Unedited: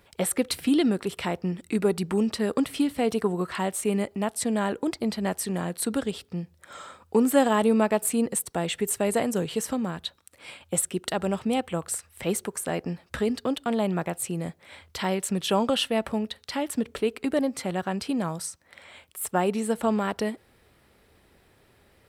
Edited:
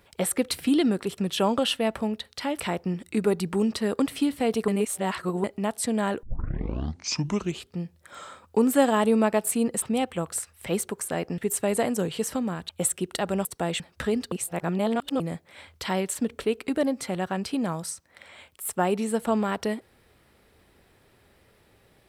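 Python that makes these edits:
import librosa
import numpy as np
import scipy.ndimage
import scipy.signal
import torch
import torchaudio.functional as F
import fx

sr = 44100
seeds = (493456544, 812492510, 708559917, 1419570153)

y = fx.edit(x, sr, fx.reverse_span(start_s=3.26, length_s=0.76),
    fx.tape_start(start_s=4.81, length_s=1.5),
    fx.swap(start_s=8.4, length_s=0.35, other_s=11.38, other_length_s=1.56),
    fx.cut(start_s=10.06, length_s=0.56),
    fx.reverse_span(start_s=13.46, length_s=0.88),
    fx.move(start_s=15.29, length_s=1.42, to_s=1.18), tone=tone)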